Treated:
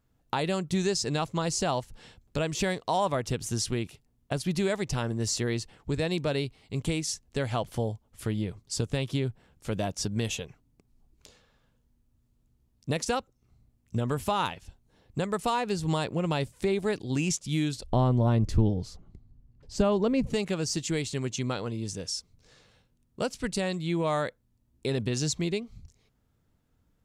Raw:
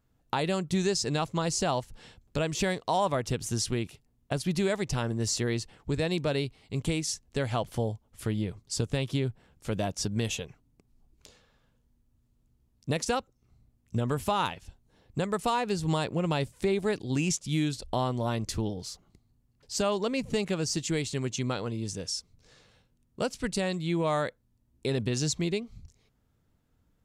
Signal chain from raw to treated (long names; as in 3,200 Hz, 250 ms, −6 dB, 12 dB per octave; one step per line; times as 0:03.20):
0:17.92–0:20.27: spectral tilt −3 dB per octave